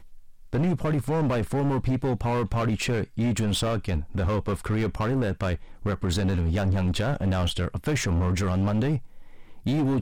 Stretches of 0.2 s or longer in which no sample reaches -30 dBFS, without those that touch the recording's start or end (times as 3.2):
5.56–5.84
8.98–9.66